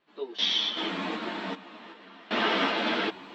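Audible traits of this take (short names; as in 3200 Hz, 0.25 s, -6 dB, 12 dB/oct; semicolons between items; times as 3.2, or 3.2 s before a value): random-step tremolo 2.6 Hz, depth 95%; a shimmering, thickened sound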